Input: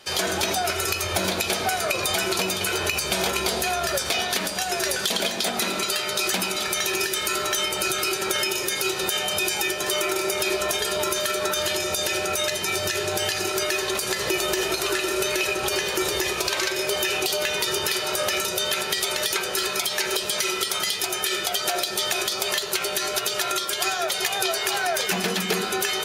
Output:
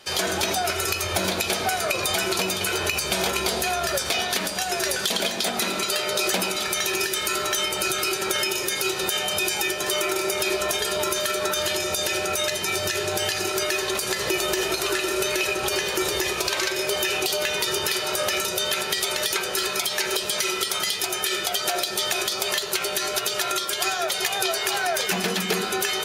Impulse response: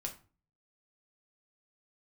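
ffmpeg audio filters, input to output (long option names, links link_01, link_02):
-filter_complex "[0:a]asettb=1/sr,asplit=3[link_01][link_02][link_03];[link_01]atrim=end=5.924[link_04];[link_02]atrim=start=5.92:end=6.51,asetpts=PTS-STARTPTS,afade=type=in:duration=0.004:curve=qsin,afade=type=out:start_time=0.586:duration=0.004:curve=qsin,equalizer=frequency=520:width=1.6:gain=6[link_05];[link_03]atrim=start=6.506[link_06];[link_04][link_05]acrossfade=duration=0.004:curve1=hsin:curve2=qsin[link_07];[link_07][link_06]acrossfade=duration=0.004:curve1=qsin:curve2=hsin"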